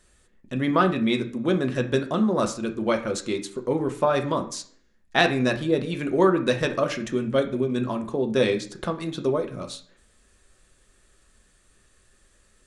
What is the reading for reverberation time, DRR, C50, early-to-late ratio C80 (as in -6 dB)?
0.55 s, 4.5 dB, 13.0 dB, 16.5 dB